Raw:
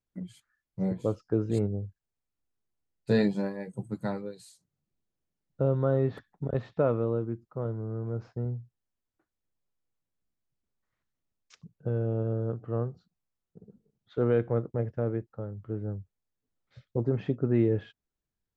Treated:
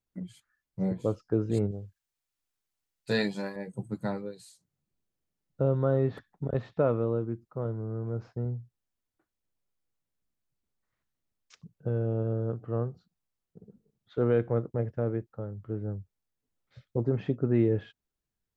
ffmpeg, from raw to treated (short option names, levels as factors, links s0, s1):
-filter_complex "[0:a]asettb=1/sr,asplit=3[s0][s1][s2];[s0]atrim=end=1.714[s3];[s1]atrim=start=1.71:end=3.56,asetpts=PTS-STARTPTS,afade=t=in:d=0.004:c=qsin,afade=t=out:st=1.846:d=0.004:c=qsin,tiltshelf=f=840:g=-6.5[s4];[s2]atrim=start=3.556[s5];[s3][s4]acrossfade=d=0.004:c1=hsin:c2=qsin[s6];[s6][s5]acrossfade=d=0.004:c1=qsin:c2=hsin"